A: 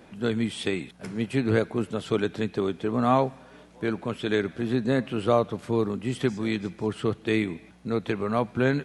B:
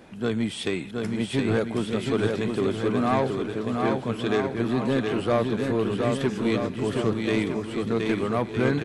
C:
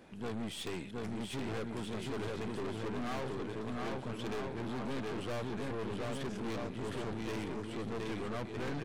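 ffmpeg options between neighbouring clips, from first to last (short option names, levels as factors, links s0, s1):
-filter_complex "[0:a]asoftclip=type=tanh:threshold=0.141,asplit=2[s0][s1];[s1]aecho=0:1:720|1260|1665|1969|2197:0.631|0.398|0.251|0.158|0.1[s2];[s0][s2]amix=inputs=2:normalize=0,volume=1.19"
-af "aeval=exprs='(tanh(35.5*val(0)+0.6)-tanh(0.6))/35.5':c=same,volume=0.562"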